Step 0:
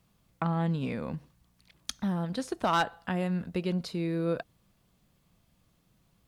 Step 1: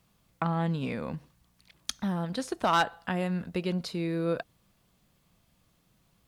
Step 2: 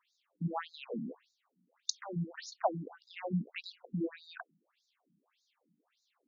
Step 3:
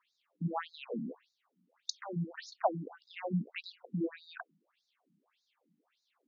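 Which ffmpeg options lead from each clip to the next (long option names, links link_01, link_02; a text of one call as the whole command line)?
ffmpeg -i in.wav -af "lowshelf=frequency=450:gain=-3.5,volume=2.5dB" out.wav
ffmpeg -i in.wav -af "afftfilt=real='re*between(b*sr/1024,210*pow(5200/210,0.5+0.5*sin(2*PI*1.7*pts/sr))/1.41,210*pow(5200/210,0.5+0.5*sin(2*PI*1.7*pts/sr))*1.41)':imag='im*between(b*sr/1024,210*pow(5200/210,0.5+0.5*sin(2*PI*1.7*pts/sr))/1.41,210*pow(5200/210,0.5+0.5*sin(2*PI*1.7*pts/sr))*1.41)':win_size=1024:overlap=0.75,volume=1dB" out.wav
ffmpeg -i in.wav -af "highpass=110,lowpass=4600,volume=1dB" out.wav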